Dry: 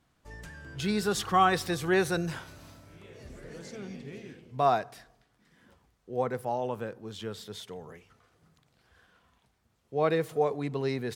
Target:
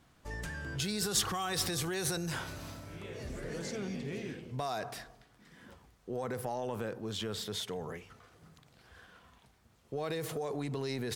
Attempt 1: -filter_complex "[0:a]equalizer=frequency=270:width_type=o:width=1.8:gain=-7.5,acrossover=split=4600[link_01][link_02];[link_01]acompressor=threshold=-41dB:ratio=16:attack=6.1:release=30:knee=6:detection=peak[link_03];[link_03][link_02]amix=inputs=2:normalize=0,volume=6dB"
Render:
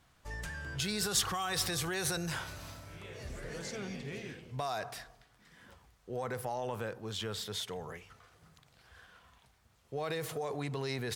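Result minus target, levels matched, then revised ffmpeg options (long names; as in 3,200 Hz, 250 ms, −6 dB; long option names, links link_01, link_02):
250 Hz band −2.5 dB
-filter_complex "[0:a]acrossover=split=4600[link_01][link_02];[link_01]acompressor=threshold=-41dB:ratio=16:attack=6.1:release=30:knee=6:detection=peak[link_03];[link_03][link_02]amix=inputs=2:normalize=0,volume=6dB"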